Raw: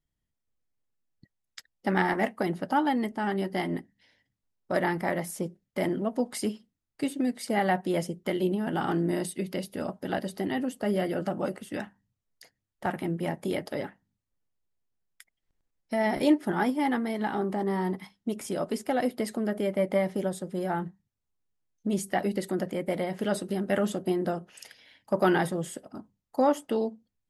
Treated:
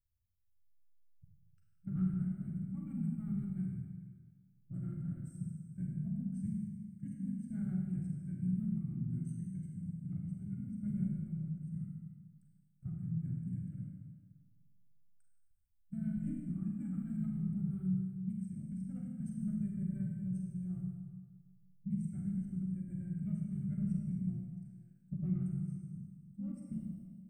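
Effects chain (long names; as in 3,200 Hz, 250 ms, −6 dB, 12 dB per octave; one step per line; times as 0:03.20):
inverse Chebyshev band-stop filter 410–9,700 Hz, stop band 40 dB
formants moved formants −5 semitones
four-comb reverb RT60 1.6 s, combs from 33 ms, DRR −1 dB
level −2 dB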